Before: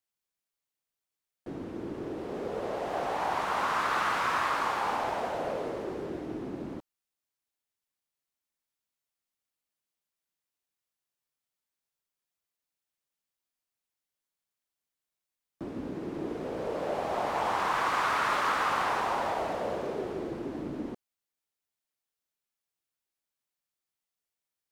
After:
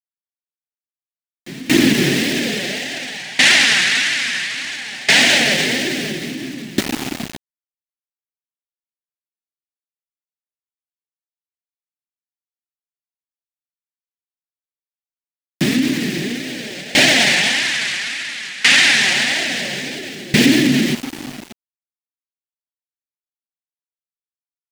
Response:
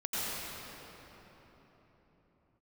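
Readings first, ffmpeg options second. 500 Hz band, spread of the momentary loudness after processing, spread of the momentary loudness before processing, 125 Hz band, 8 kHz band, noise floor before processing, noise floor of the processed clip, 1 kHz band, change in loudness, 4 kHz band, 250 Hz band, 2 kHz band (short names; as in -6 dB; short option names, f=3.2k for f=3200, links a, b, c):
+7.5 dB, 16 LU, 12 LU, +18.0 dB, +26.5 dB, under -85 dBFS, under -85 dBFS, -1.0 dB, +16.0 dB, +27.0 dB, +19.0 dB, +19.5 dB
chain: -filter_complex "[0:a]aeval=exprs='if(lt(val(0),0),0.708*val(0),val(0))':c=same,highshelf=f=2.2k:g=-9,acrossover=split=290[a][b];[a]acontrast=73[c];[c][b]amix=inputs=2:normalize=0,aexciter=amount=12.2:drive=10:freq=2k,highpass=f=120:w=0.5412,highpass=f=120:w=1.3066,equalizer=f=140:t=q:w=4:g=10,equalizer=f=250:t=q:w=4:g=8,equalizer=f=490:t=q:w=4:g=-3,equalizer=f=1k:t=q:w=4:g=-8,equalizer=f=1.8k:t=q:w=4:g=7,lowpass=f=9.5k:w=0.5412,lowpass=f=9.5k:w=1.3066,flanger=delay=2.8:depth=2.9:regen=27:speed=1.7:shape=triangular,aecho=1:1:577:0.316,aeval=exprs='val(0)*gte(abs(val(0)),0.00944)':c=same,alimiter=level_in=24.5dB:limit=-1dB:release=50:level=0:latency=1,aeval=exprs='val(0)*pow(10,-22*if(lt(mod(0.59*n/s,1),2*abs(0.59)/1000),1-mod(0.59*n/s,1)/(2*abs(0.59)/1000),(mod(0.59*n/s,1)-2*abs(0.59)/1000)/(1-2*abs(0.59)/1000))/20)':c=same"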